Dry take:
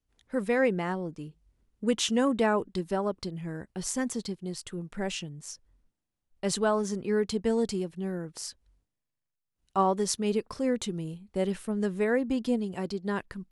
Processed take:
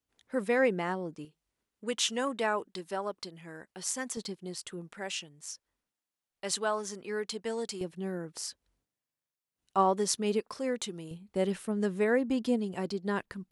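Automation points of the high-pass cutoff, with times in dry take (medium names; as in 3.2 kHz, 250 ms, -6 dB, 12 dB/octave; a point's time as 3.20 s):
high-pass 6 dB/octave
250 Hz
from 1.25 s 830 Hz
from 4.17 s 350 Hz
from 4.94 s 910 Hz
from 7.81 s 220 Hz
from 10.40 s 520 Hz
from 11.11 s 140 Hz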